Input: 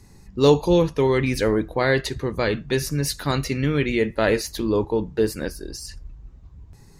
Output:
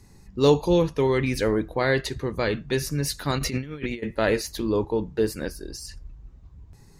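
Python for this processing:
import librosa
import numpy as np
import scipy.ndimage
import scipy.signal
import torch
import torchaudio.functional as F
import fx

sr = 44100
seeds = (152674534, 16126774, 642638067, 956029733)

y = fx.over_compress(x, sr, threshold_db=-27.0, ratio=-0.5, at=(3.38, 4.02), fade=0.02)
y = y * 10.0 ** (-2.5 / 20.0)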